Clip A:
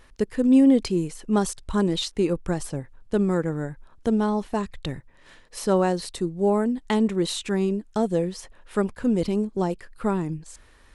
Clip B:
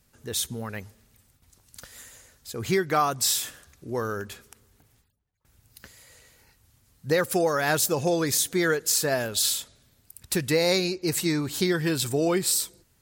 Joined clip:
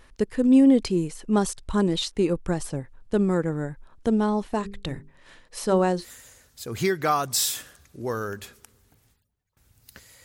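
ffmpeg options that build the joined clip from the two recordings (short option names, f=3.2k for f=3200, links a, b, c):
-filter_complex "[0:a]asettb=1/sr,asplit=3[a][b][c];[a]atrim=end=4.554[d];[b]atrim=start=4.55:end=6.06,asetpts=PTS-STARTPTS,afade=t=in:d=0.004:c=qsin,afade=t=out:st=1.506:d=0.004:c=qsin,bandreject=f=50:t=h:w=6,bandreject=f=100:t=h:w=6,bandreject=f=150:t=h:w=6,bandreject=f=200:t=h:w=6,bandreject=f=250:t=h:w=6,bandreject=f=300:t=h:w=6,bandreject=f=350:t=h:w=6,bandreject=f=400:t=h:w=6,bandreject=f=450:t=h:w=6[e];[c]atrim=start=6.056[f];[d][e]acrossfade=d=0.004:c1=hsin:c2=qsin[g];[g][f]acrossfade=d=0.004:c1=qsin:c2=hsin,apad=whole_dur=10.24,atrim=end=10.24,atrim=end=6.06,asetpts=PTS-STARTPTS[h];[1:a]atrim=start=1.86:end=6.12,asetpts=PTS-STARTPTS[i];[h][i]acrossfade=d=0.08:c1=tri:c2=tri"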